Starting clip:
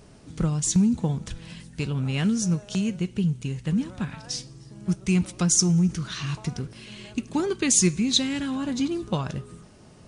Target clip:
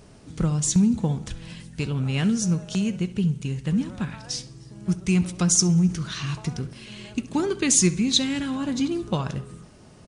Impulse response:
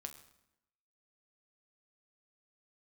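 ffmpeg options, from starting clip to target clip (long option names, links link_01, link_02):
-filter_complex "[0:a]asplit=2[link_01][link_02];[link_02]adelay=67,lowpass=frequency=3200:poles=1,volume=-16dB,asplit=2[link_03][link_04];[link_04]adelay=67,lowpass=frequency=3200:poles=1,volume=0.52,asplit=2[link_05][link_06];[link_06]adelay=67,lowpass=frequency=3200:poles=1,volume=0.52,asplit=2[link_07][link_08];[link_08]adelay=67,lowpass=frequency=3200:poles=1,volume=0.52,asplit=2[link_09][link_10];[link_10]adelay=67,lowpass=frequency=3200:poles=1,volume=0.52[link_11];[link_01][link_03][link_05][link_07][link_09][link_11]amix=inputs=6:normalize=0,volume=1dB"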